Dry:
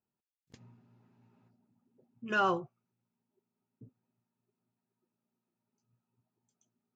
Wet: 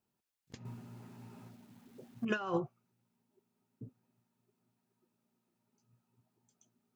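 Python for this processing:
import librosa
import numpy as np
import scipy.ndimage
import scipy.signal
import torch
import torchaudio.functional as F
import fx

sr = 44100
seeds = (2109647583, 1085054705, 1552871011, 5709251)

y = fx.law_mismatch(x, sr, coded='mu', at=(0.65, 2.25))
y = fx.over_compress(y, sr, threshold_db=-33.0, ratio=-0.5)
y = y * librosa.db_to_amplitude(1.0)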